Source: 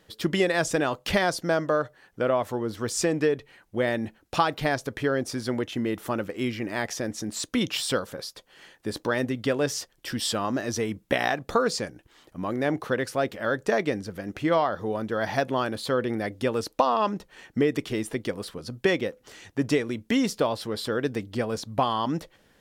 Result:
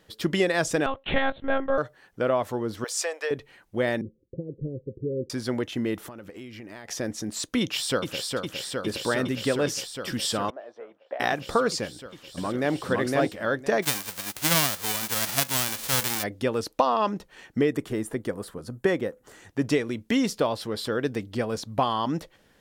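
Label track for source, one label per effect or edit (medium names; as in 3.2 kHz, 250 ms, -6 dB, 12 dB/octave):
0.860000	1.780000	monotone LPC vocoder at 8 kHz 270 Hz
2.840000	3.310000	steep high-pass 520 Hz
4.010000	5.300000	rippled Chebyshev low-pass 540 Hz, ripple 6 dB
5.980000	6.880000	compression 12:1, threshold -37 dBFS
7.610000	8.230000	echo throw 410 ms, feedback 85%, level -4 dB
10.500000	11.200000	ladder band-pass 740 Hz, resonance 50%
11.860000	12.810000	echo throw 510 ms, feedback 15%, level -0.5 dB
13.820000	16.220000	formants flattened exponent 0.1
17.720000	19.490000	high-order bell 3.6 kHz -8 dB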